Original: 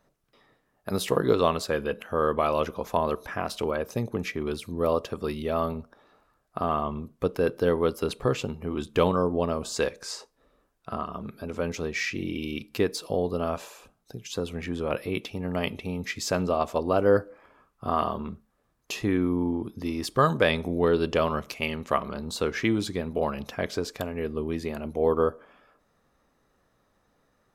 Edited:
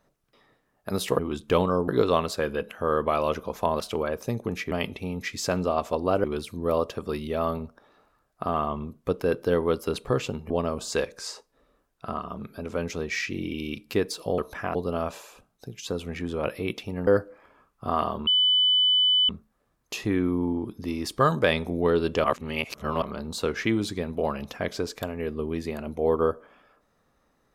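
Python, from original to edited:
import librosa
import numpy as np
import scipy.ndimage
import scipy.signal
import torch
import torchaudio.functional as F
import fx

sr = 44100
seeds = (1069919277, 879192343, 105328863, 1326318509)

y = fx.edit(x, sr, fx.move(start_s=3.11, length_s=0.37, to_s=13.22),
    fx.move(start_s=8.65, length_s=0.69, to_s=1.19),
    fx.move(start_s=15.54, length_s=1.53, to_s=4.39),
    fx.insert_tone(at_s=18.27, length_s=1.02, hz=3000.0, db=-17.5),
    fx.reverse_span(start_s=21.22, length_s=0.78), tone=tone)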